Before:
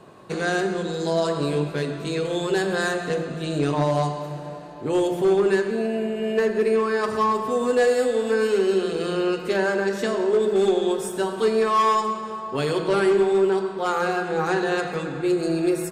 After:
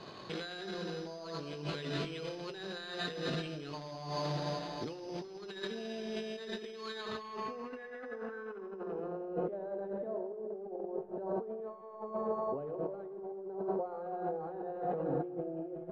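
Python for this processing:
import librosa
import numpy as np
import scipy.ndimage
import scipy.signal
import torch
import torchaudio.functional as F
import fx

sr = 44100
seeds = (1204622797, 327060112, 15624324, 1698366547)

p1 = fx.tracing_dist(x, sr, depth_ms=0.03)
p2 = F.preemphasis(torch.from_numpy(p1), 0.8).numpy()
p3 = fx.over_compress(p2, sr, threshold_db=-45.0, ratio=-1.0)
p4 = np.repeat(scipy.signal.resample_poly(p3, 1, 8), 8)[:len(p3)]
p5 = p4 + fx.echo_feedback(p4, sr, ms=213, feedback_pct=52, wet_db=-21.0, dry=0)
p6 = fx.filter_sweep_lowpass(p5, sr, from_hz=4000.0, to_hz=650.0, start_s=6.91, end_s=9.39, q=2.9)
y = p6 * librosa.db_to_amplitude(3.0)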